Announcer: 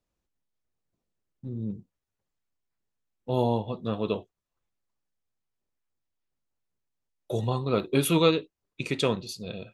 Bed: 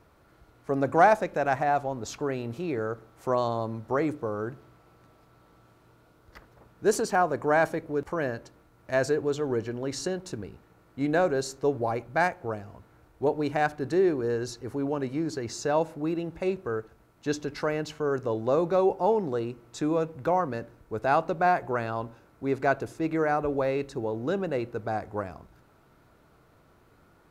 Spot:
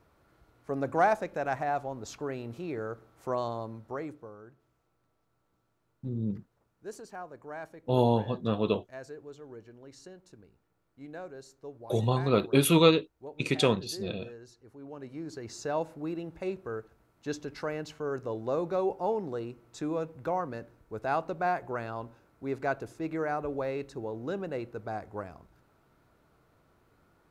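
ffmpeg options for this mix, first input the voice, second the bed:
-filter_complex "[0:a]adelay=4600,volume=1dB[a];[1:a]volume=7dB,afade=t=out:st=3.44:d=0.97:silence=0.223872,afade=t=in:st=14.77:d=0.88:silence=0.237137[b];[a][b]amix=inputs=2:normalize=0"

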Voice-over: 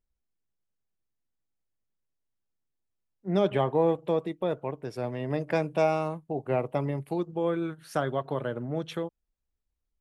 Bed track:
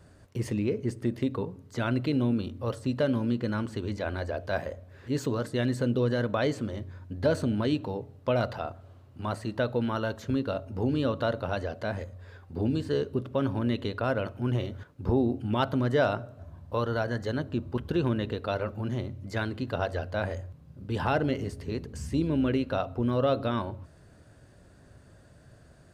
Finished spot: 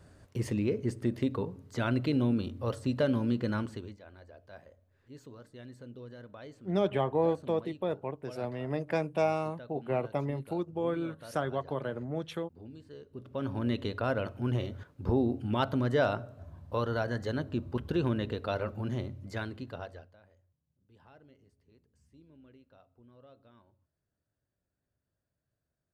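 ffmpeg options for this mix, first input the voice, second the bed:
-filter_complex "[0:a]adelay=3400,volume=-3.5dB[a];[1:a]volume=16.5dB,afade=t=out:st=3.56:d=0.41:silence=0.112202,afade=t=in:st=13.09:d=0.61:silence=0.125893,afade=t=out:st=19.02:d=1.15:silence=0.0354813[b];[a][b]amix=inputs=2:normalize=0"

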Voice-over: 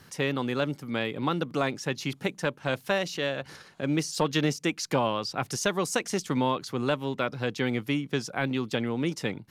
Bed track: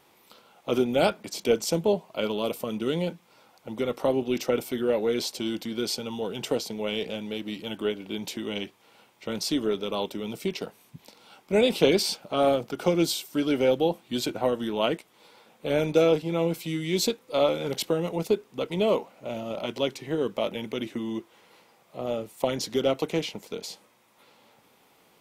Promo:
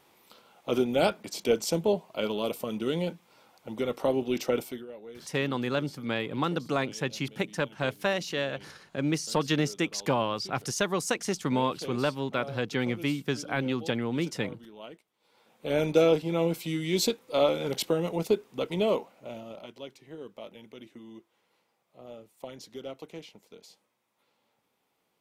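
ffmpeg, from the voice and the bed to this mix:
-filter_complex "[0:a]adelay=5150,volume=-1dB[a];[1:a]volume=16.5dB,afade=t=out:st=4.59:d=0.27:silence=0.133352,afade=t=in:st=15.2:d=0.64:silence=0.11885,afade=t=out:st=18.68:d=1.05:silence=0.188365[b];[a][b]amix=inputs=2:normalize=0"

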